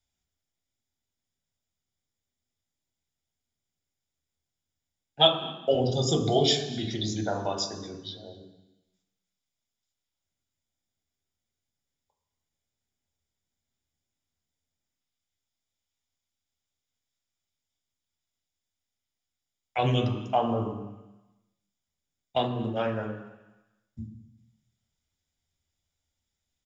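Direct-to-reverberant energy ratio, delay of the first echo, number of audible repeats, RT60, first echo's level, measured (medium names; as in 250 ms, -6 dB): 4.0 dB, 239 ms, 1, 1.0 s, -22.0 dB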